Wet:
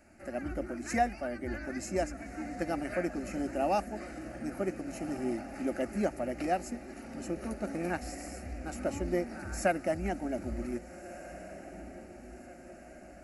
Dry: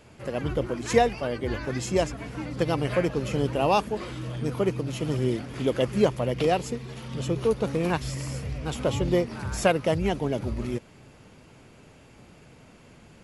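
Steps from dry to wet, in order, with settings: fixed phaser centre 680 Hz, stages 8; diffused feedback echo 1.625 s, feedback 54%, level -14 dB; gain -4 dB

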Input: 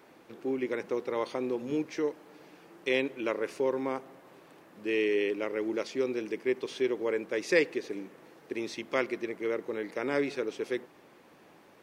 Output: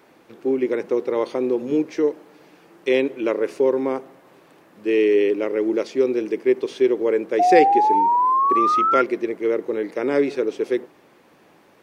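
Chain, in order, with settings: painted sound rise, 7.39–9.02, 700–1400 Hz -23 dBFS; dynamic EQ 380 Hz, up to +8 dB, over -42 dBFS, Q 0.8; gain +3.5 dB

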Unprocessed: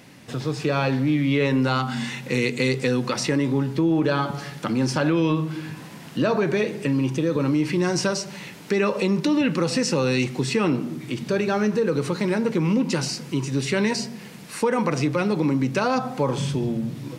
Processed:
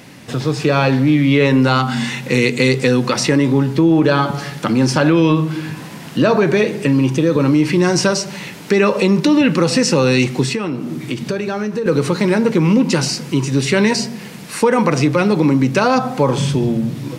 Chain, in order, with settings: 10.45–11.86 compressor 6:1, threshold -26 dBFS, peak gain reduction 9 dB; gain +8 dB

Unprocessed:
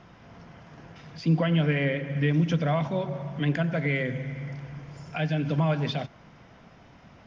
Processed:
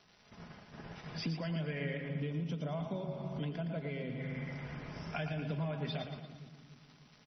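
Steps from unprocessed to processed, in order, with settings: gate -46 dBFS, range -20 dB; crackle 450/s -49 dBFS; comb 4.8 ms, depth 33%; compressor 6:1, threshold -37 dBFS, peak gain reduction 18 dB; 2.08–4.19 bell 1800 Hz -12.5 dB 0.56 oct; split-band echo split 360 Hz, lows 0.297 s, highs 0.115 s, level -8 dB; downsampling 16000 Hz; gain +1 dB; MP3 24 kbps 24000 Hz

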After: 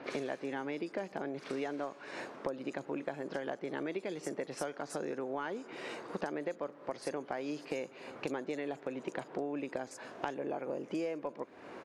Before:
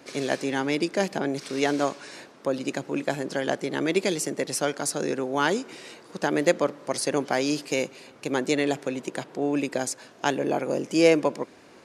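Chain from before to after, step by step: overdrive pedal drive 9 dB, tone 1000 Hz, clips at -5.5 dBFS; compressor 12:1, threshold -38 dBFS, peak gain reduction 23.5 dB; bands offset in time lows, highs 40 ms, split 4800 Hz; gain +4 dB

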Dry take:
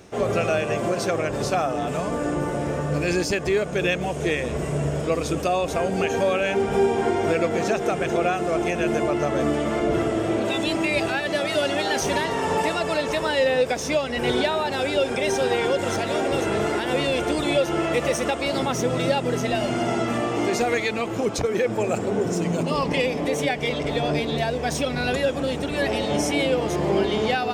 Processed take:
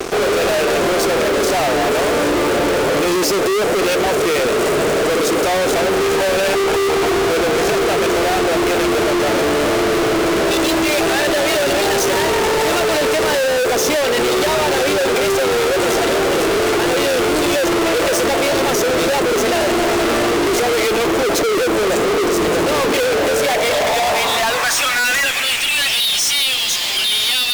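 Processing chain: high-pass sweep 380 Hz -> 3600 Hz, 23.04–26.08; fuzz box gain 44 dB, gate -45 dBFS; gain -2 dB

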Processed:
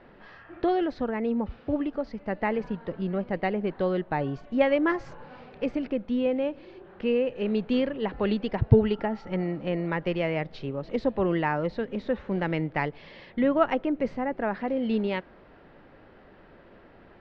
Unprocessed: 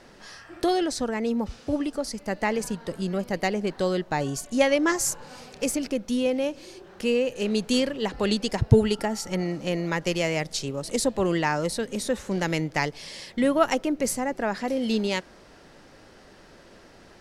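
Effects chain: Bessel low-pass 2100 Hz, order 6; gain -1 dB

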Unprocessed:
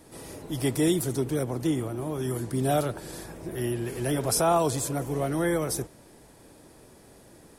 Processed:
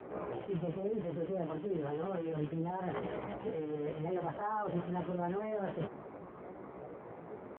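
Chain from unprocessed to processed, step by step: rattling part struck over -41 dBFS, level -25 dBFS; LPF 1400 Hz 24 dB/oct; low shelf 94 Hz -7 dB; limiter -23.5 dBFS, peak gain reduction 10 dB; reverse; compressor 6:1, threshold -42 dBFS, peak gain reduction 14 dB; reverse; pitch shift +4 st; chorus 0.3 Hz, delay 16 ms, depth 7.4 ms; gain +11.5 dB; AMR-NB 5.9 kbps 8000 Hz

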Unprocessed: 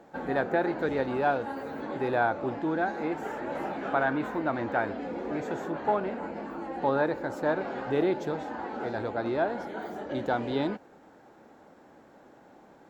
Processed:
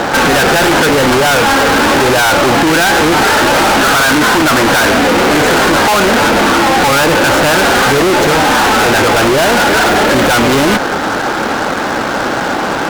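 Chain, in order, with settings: bell 1400 Hz +10.5 dB 1 oct; fuzz box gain 51 dB, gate -57 dBFS; gain +4.5 dB

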